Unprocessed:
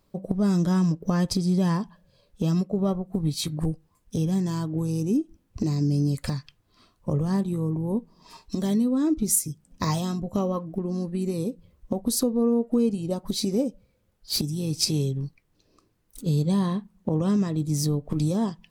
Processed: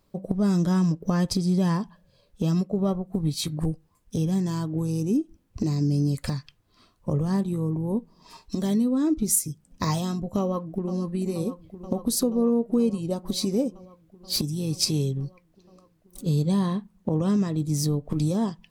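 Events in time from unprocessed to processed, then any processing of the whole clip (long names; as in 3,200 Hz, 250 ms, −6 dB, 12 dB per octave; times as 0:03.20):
0:10.39–0:10.97: delay throw 480 ms, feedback 80%, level −11 dB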